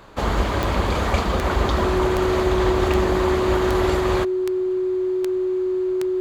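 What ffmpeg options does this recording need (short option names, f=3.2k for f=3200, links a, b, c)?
-af "adeclick=t=4,bandreject=f=370:w=30"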